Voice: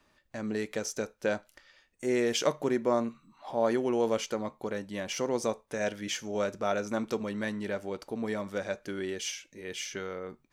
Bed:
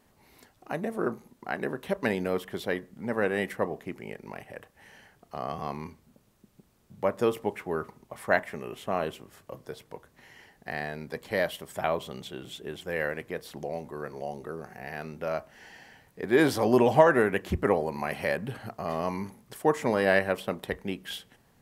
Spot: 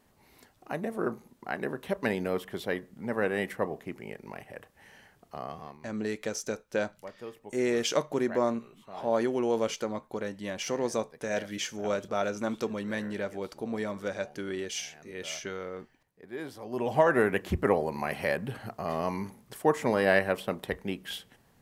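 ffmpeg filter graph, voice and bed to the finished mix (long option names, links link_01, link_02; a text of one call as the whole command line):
ffmpeg -i stem1.wav -i stem2.wav -filter_complex "[0:a]adelay=5500,volume=0dB[link_01];[1:a]volume=15dB,afade=type=out:start_time=5.26:duration=0.53:silence=0.16788,afade=type=in:start_time=16.69:duration=0.55:silence=0.149624[link_02];[link_01][link_02]amix=inputs=2:normalize=0" out.wav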